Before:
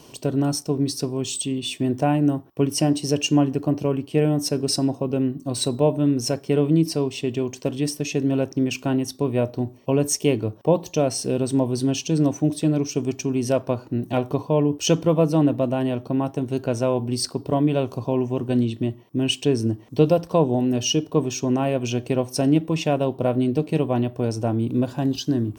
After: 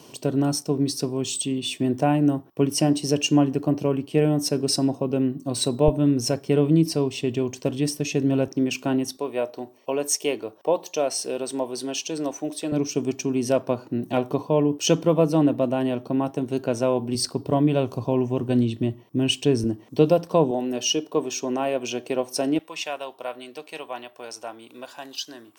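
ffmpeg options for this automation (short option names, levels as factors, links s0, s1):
-af "asetnsamples=n=441:p=0,asendcmd='5.88 highpass f 45;8.48 highpass f 170;9.17 highpass f 470;12.72 highpass f 160;17.15 highpass f 56;19.64 highpass f 160;20.51 highpass f 350;22.59 highpass f 1000',highpass=120"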